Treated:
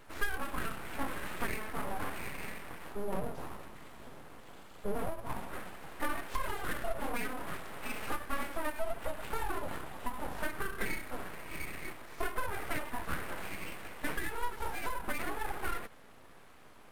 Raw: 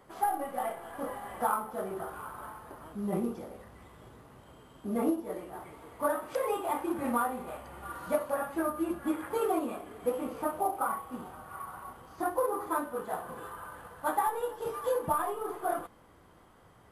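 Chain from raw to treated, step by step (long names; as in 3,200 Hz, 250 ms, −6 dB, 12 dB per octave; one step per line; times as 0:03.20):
harmonic and percussive parts rebalanced harmonic +4 dB
downward compressor 10 to 1, threshold −31 dBFS, peak gain reduction 12 dB
flanger 0.19 Hz, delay 4.2 ms, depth 7.9 ms, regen +67%
full-wave rectification
level +6.5 dB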